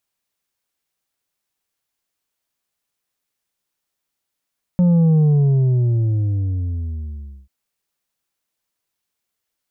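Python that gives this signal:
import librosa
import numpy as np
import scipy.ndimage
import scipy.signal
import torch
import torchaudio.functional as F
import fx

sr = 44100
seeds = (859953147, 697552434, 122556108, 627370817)

y = fx.sub_drop(sr, level_db=-11.5, start_hz=180.0, length_s=2.69, drive_db=5, fade_s=2.3, end_hz=65.0)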